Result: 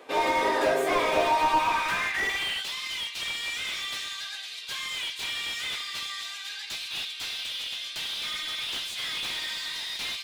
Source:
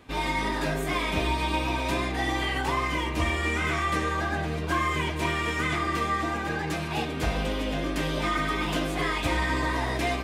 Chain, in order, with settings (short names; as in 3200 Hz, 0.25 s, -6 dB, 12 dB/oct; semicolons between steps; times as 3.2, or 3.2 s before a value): high-pass sweep 490 Hz -> 3700 Hz, 1.09–2.68; slew limiter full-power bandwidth 77 Hz; gain +3 dB